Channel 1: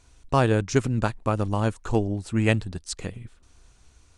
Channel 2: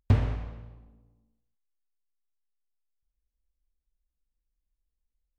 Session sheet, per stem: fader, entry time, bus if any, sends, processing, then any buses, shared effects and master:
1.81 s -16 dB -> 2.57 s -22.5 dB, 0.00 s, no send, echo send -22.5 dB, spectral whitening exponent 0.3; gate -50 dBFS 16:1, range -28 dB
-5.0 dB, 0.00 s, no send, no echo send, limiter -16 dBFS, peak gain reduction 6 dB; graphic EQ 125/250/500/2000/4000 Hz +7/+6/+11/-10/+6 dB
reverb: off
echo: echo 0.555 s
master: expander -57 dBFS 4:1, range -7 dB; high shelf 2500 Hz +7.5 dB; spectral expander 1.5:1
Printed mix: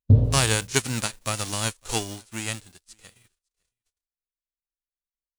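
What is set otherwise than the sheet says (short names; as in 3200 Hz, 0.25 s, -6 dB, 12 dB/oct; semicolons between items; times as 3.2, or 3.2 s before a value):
stem 1 -16.0 dB -> -6.5 dB; master: missing expander -57 dBFS 4:1, range -7 dB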